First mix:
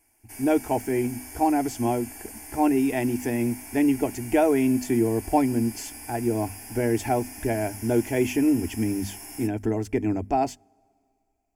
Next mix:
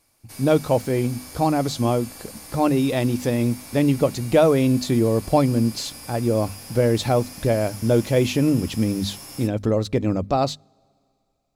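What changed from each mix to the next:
background: send -9.0 dB; master: remove fixed phaser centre 800 Hz, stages 8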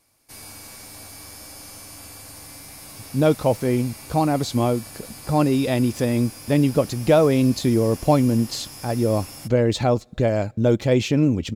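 speech: entry +2.75 s; master: remove notches 50/100/150/200/250 Hz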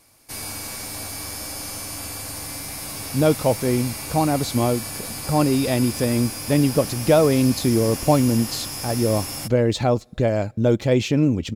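background +8.5 dB

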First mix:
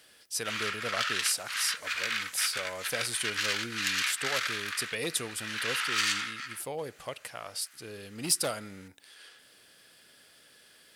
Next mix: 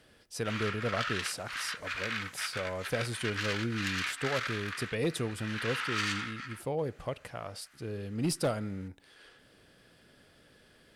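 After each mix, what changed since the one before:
master: add tilt -3.5 dB/oct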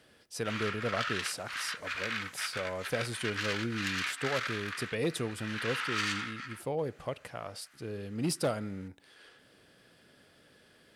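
speech: add HPF 110 Hz 6 dB/oct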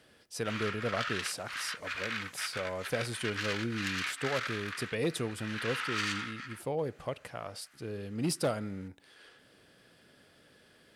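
reverb: off

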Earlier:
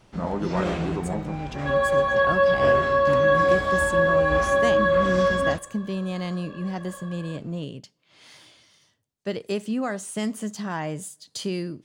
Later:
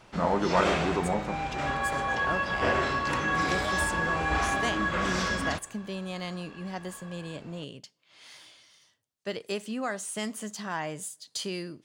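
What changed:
first sound +7.0 dB; second sound: add ladder high-pass 930 Hz, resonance 25%; master: add low shelf 460 Hz -10 dB

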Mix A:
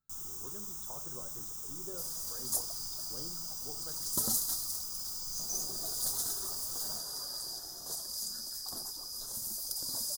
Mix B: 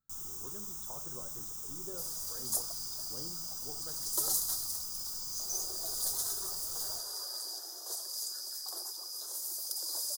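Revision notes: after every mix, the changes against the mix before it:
second sound: add steep high-pass 320 Hz 96 dB/oct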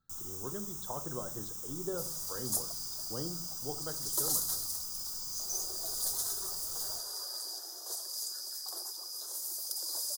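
speech +9.5 dB

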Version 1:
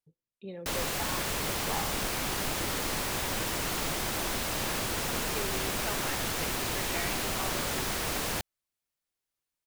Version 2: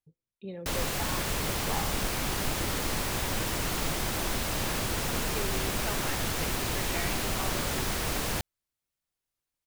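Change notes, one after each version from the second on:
master: add low shelf 170 Hz +6.5 dB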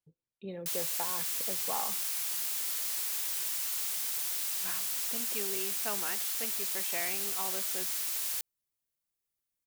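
background: add differentiator; master: add low shelf 110 Hz -8 dB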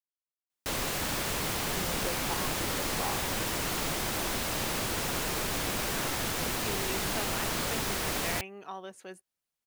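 speech: entry +1.30 s; background: remove differentiator

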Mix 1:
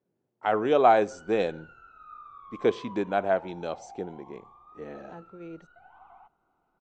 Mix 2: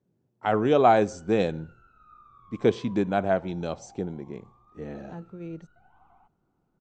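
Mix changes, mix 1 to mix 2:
background -7.5 dB; master: add tone controls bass +12 dB, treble +5 dB

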